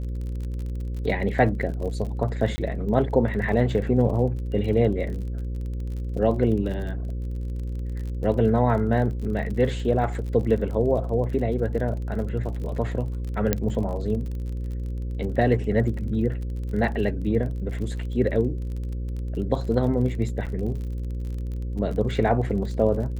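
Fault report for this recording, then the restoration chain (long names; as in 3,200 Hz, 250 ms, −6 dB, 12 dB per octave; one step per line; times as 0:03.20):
mains buzz 60 Hz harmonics 9 −29 dBFS
surface crackle 37 per second −33 dBFS
0:02.56–0:02.58: drop-out 20 ms
0:13.53: click −6 dBFS
0:20.46–0:20.47: drop-out 7.2 ms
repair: click removal
hum removal 60 Hz, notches 9
repair the gap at 0:02.56, 20 ms
repair the gap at 0:20.46, 7.2 ms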